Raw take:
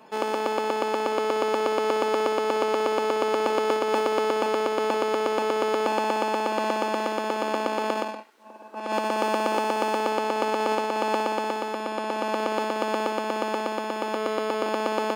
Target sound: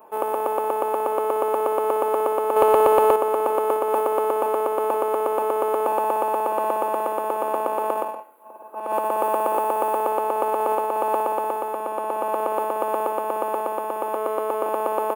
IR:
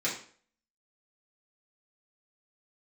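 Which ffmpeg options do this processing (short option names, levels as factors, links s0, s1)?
-filter_complex "[0:a]firequalizer=gain_entry='entry(100,0);entry(180,-13);entry(330,0);entry(520,3);entry(1100,4);entry(1800,-9);entry(2600,-8);entry(3700,-16);entry(5300,-23);entry(11000,13)':delay=0.05:min_phase=1,asettb=1/sr,asplit=3[s0][s1][s2];[s0]atrim=end=2.564[s3];[s1]atrim=start=2.56:end=3.16,asetpts=PTS-STARTPTS,afade=t=in:d=0.004:c=qsin,afade=t=out:st=0.596:d=0.004:c=qsin,acontrast=69[s4];[s2]atrim=start=3.156[s5];[s3][s4]acrossfade=d=0.004:c1=hsin:c2=qsin[s6];[s6][s5]acrossfade=d=0.004:c1=qsin:c2=hsin,asplit=2[s7][s8];[1:a]atrim=start_sample=2205,adelay=119[s9];[s8][s9]afir=irnorm=-1:irlink=0,volume=0.0398[s10];[s7][s10]amix=inputs=2:normalize=0"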